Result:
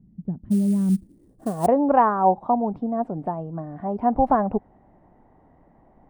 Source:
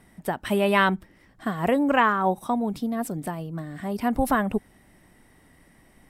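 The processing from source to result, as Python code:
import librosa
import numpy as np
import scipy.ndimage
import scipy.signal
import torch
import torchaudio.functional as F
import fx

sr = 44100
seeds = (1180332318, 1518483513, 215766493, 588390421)

y = fx.filter_sweep_lowpass(x, sr, from_hz=190.0, to_hz=810.0, start_s=0.9, end_s=1.69, q=2.4)
y = fx.sample_hold(y, sr, seeds[0], rate_hz=9300.0, jitter_pct=20, at=(0.5, 1.65), fade=0.02)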